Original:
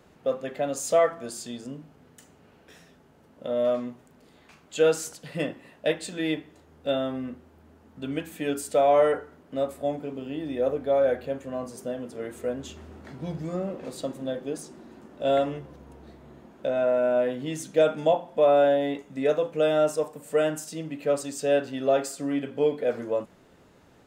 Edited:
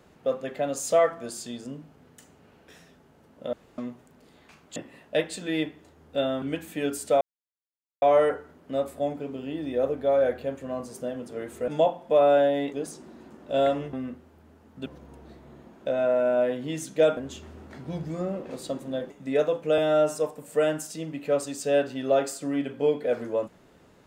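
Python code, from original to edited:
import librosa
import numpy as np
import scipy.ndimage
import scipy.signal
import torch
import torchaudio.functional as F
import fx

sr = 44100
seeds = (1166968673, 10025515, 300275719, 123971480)

y = fx.edit(x, sr, fx.room_tone_fill(start_s=3.53, length_s=0.25),
    fx.cut(start_s=4.76, length_s=0.71),
    fx.move(start_s=7.13, length_s=0.93, to_s=15.64),
    fx.insert_silence(at_s=8.85, length_s=0.81),
    fx.swap(start_s=12.51, length_s=1.93, other_s=17.95, other_length_s=1.05),
    fx.stretch_span(start_s=19.68, length_s=0.25, factor=1.5), tone=tone)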